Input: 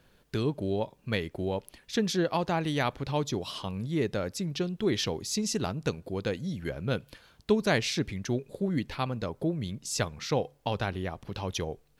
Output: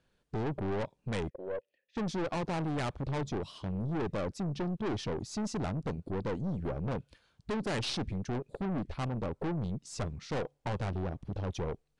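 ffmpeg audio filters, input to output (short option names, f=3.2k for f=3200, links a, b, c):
-filter_complex "[0:a]afwtdn=0.0251,asplit=3[a][b][c];[a]afade=t=out:st=1.29:d=0.02[d];[b]asplit=3[e][f][g];[e]bandpass=f=530:t=q:w=8,volume=0dB[h];[f]bandpass=f=1.84k:t=q:w=8,volume=-6dB[i];[g]bandpass=f=2.48k:t=q:w=8,volume=-9dB[j];[h][i][j]amix=inputs=3:normalize=0,afade=t=in:st=1.29:d=0.02,afade=t=out:st=1.95:d=0.02[k];[c]afade=t=in:st=1.95:d=0.02[l];[d][k][l]amix=inputs=3:normalize=0,aeval=exprs='(tanh(70.8*val(0)+0.35)-tanh(0.35))/70.8':c=same,aresample=22050,aresample=44100,volume=6dB"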